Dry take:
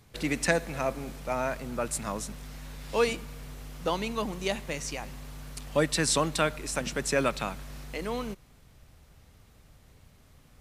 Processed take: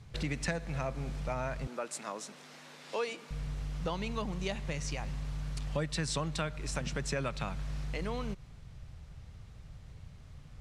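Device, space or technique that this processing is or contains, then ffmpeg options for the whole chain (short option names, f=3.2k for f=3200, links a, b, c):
jukebox: -filter_complex "[0:a]lowpass=6.9k,lowshelf=f=190:t=q:w=1.5:g=7,acompressor=threshold=-33dB:ratio=3,asettb=1/sr,asplit=3[a][b][c];[a]atrim=end=1.674[d];[b]atrim=start=1.67:end=3.31,asetpts=PTS-STARTPTS,afade=t=in:d=0.004:c=qsin,afade=t=out:st=1.636:d=0.004:c=qsin,highpass=f=270:w=0.5412,highpass=f=270:w=1.3066[e];[c]atrim=start=3.306[f];[d][e]acrossfade=d=0.004:c1=hsin:c2=qsin[g];[g][f]acrossfade=d=0.004:c1=qsin:c2=hsin"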